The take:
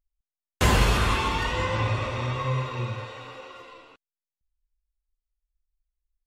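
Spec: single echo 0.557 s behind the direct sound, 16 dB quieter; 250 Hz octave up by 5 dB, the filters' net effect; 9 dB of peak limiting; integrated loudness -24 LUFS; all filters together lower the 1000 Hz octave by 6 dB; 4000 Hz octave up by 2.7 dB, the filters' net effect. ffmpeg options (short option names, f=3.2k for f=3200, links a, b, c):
-af "equalizer=f=250:t=o:g=7,equalizer=f=1k:t=o:g=-7.5,equalizer=f=4k:t=o:g=4,alimiter=limit=-15dB:level=0:latency=1,aecho=1:1:557:0.158,volume=3dB"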